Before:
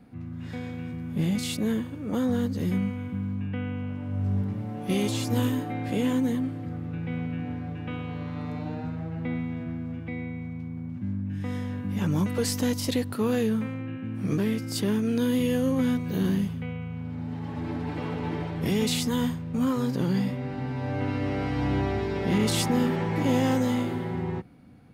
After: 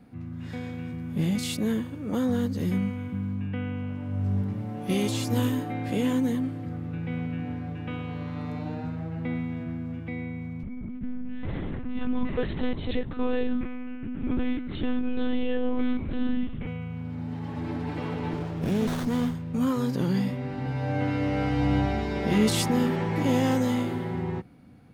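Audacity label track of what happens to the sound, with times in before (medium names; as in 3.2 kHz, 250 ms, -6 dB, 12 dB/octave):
10.630000	16.670000	monotone LPC vocoder at 8 kHz 250 Hz
18.330000	19.350000	sliding maximum over 17 samples
20.640000	22.490000	doubling 14 ms -4 dB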